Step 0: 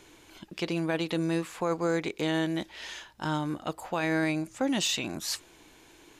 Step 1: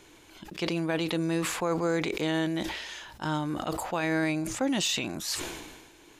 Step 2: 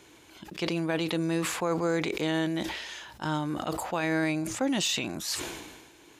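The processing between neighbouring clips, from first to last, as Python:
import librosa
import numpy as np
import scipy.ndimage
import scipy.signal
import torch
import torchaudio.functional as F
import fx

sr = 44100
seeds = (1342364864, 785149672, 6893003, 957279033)

y1 = fx.sustainer(x, sr, db_per_s=42.0)
y2 = scipy.signal.sosfilt(scipy.signal.butter(2, 56.0, 'highpass', fs=sr, output='sos'), y1)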